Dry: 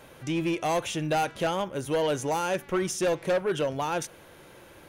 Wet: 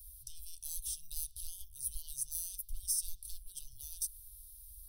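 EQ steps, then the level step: inverse Chebyshev band-stop 160–2300 Hz, stop band 60 dB; static phaser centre 2 kHz, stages 6; +13.0 dB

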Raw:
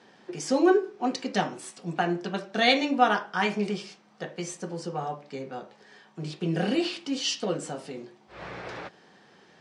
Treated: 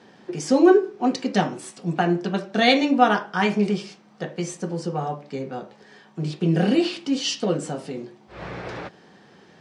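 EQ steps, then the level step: bass shelf 390 Hz +7 dB; +2.5 dB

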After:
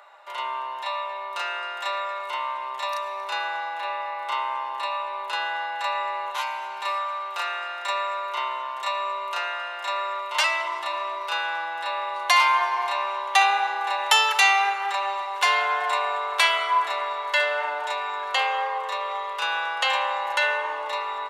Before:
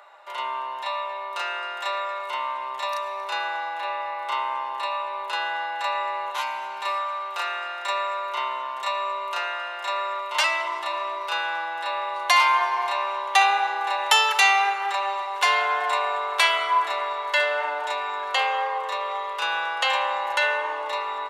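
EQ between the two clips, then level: bass shelf 240 Hz -8.5 dB; 0.0 dB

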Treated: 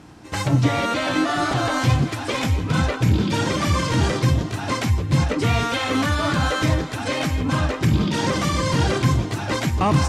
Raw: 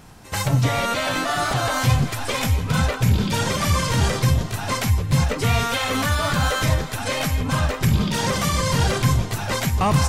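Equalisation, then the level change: high-pass 55 Hz; distance through air 52 m; peaking EQ 310 Hz +12.5 dB 0.33 oct; 0.0 dB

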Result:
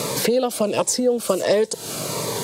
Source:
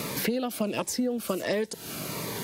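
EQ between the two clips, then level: graphic EQ 125/500/1000/4000/8000 Hz +7/+11/+7/+6/+12 dB; 0.0 dB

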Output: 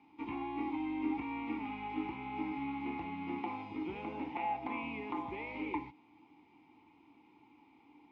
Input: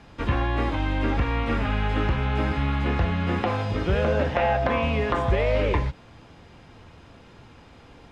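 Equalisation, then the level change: vowel filter u; bass shelf 330 Hz -6.5 dB; +1.0 dB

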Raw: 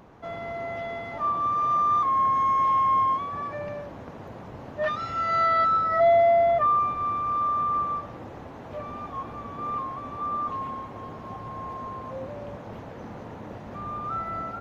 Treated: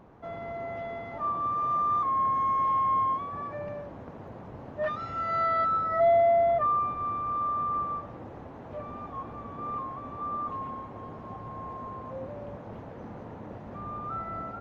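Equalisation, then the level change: treble shelf 2.3 kHz -10 dB; -2.0 dB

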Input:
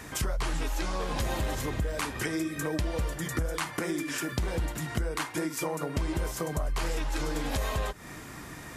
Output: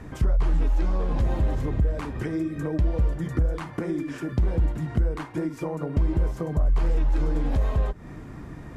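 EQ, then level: tilt EQ -4.5 dB/octave; bass shelf 110 Hz -9 dB; -2.5 dB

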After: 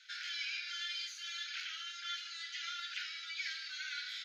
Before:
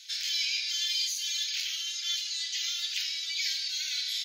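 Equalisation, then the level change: band-pass filter 1.4 kHz, Q 6.9; +12.5 dB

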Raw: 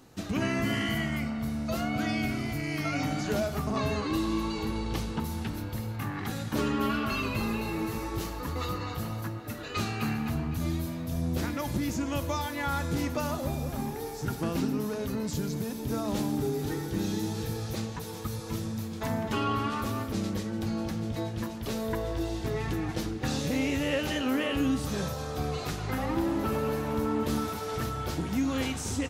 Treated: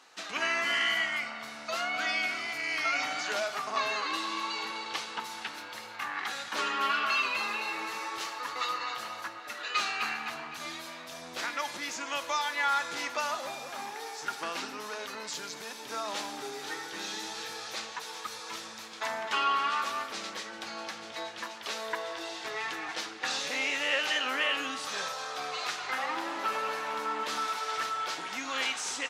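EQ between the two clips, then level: high-pass 1.1 kHz 12 dB/octave; distance through air 99 m; treble shelf 11 kHz +10 dB; +7.5 dB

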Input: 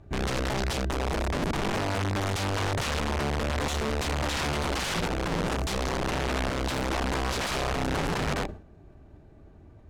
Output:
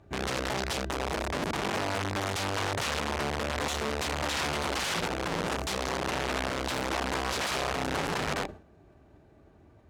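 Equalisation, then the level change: high-pass 48 Hz; bass shelf 270 Hz -7.5 dB; 0.0 dB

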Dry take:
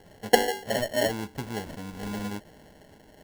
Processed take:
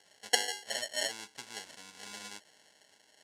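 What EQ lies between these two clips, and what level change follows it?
frequency weighting ITU-R 468; -10.5 dB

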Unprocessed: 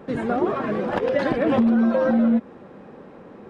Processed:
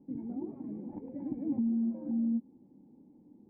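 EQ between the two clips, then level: cascade formant filter u; high-order bell 690 Hz -10 dB 2.4 oct; -3.5 dB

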